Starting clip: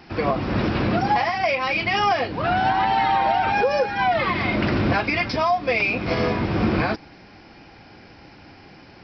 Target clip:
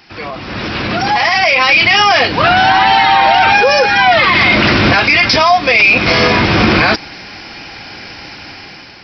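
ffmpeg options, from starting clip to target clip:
-af "tiltshelf=f=1.3k:g=-7,alimiter=limit=-18dB:level=0:latency=1:release=14,dynaudnorm=f=430:g=5:m=15dB,volume=2.5dB"

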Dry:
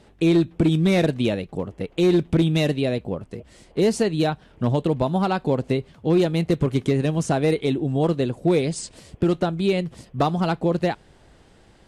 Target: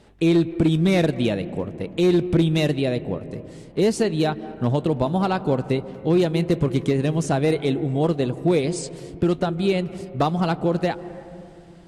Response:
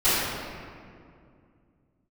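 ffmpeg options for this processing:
-filter_complex "[0:a]asplit=2[a][b];[1:a]atrim=start_sample=2205,lowpass=2.2k,adelay=146[c];[b][c]afir=irnorm=-1:irlink=0,volume=-32.5dB[d];[a][d]amix=inputs=2:normalize=0"

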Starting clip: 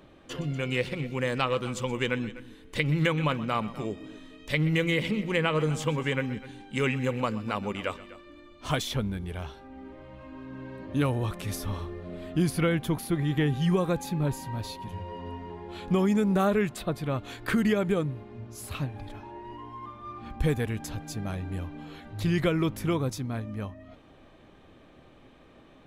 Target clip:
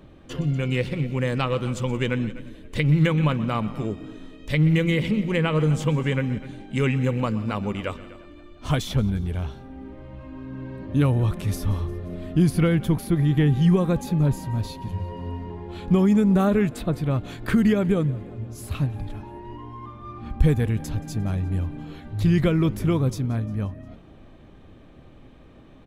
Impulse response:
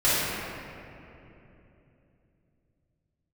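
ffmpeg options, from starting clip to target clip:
-filter_complex "[0:a]lowshelf=f=250:g=11,asplit=5[a][b][c][d][e];[b]adelay=176,afreqshift=38,volume=-22dB[f];[c]adelay=352,afreqshift=76,volume=-26.6dB[g];[d]adelay=528,afreqshift=114,volume=-31.2dB[h];[e]adelay=704,afreqshift=152,volume=-35.7dB[i];[a][f][g][h][i]amix=inputs=5:normalize=0"

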